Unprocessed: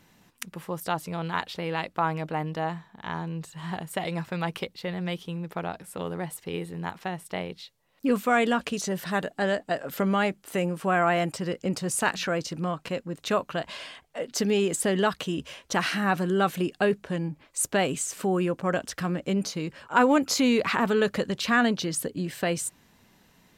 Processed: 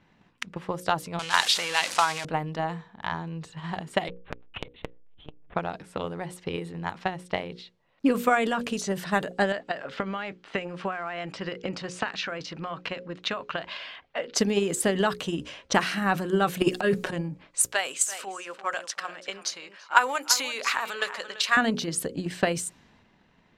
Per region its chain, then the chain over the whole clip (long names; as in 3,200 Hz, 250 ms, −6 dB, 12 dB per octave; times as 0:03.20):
0:01.19–0:02.25: converter with a step at zero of −31.5 dBFS + meter weighting curve ITU-R 468
0:04.08–0:05.55: parametric band 110 Hz −10.5 dB 0.62 octaves + one-pitch LPC vocoder at 8 kHz 150 Hz + saturating transformer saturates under 450 Hz
0:09.52–0:14.35: low-pass filter 3,900 Hz + tilt shelving filter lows −5.5 dB, about 700 Hz + downward compressor, threshold −27 dBFS
0:16.61–0:17.13: parametric band 95 Hz −7.5 dB 2.9 octaves + comb filter 5.5 ms, depth 90% + transient designer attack −11 dB, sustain +11 dB
0:17.66–0:21.57: high-pass filter 910 Hz + high-shelf EQ 6,300 Hz +5 dB + single-tap delay 339 ms −13 dB
whole clip: low-pass that shuts in the quiet parts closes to 2,900 Hz, open at −24 dBFS; mains-hum notches 60/120/180/240/300/360/420/480/540 Hz; transient designer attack +9 dB, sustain +5 dB; level −2.5 dB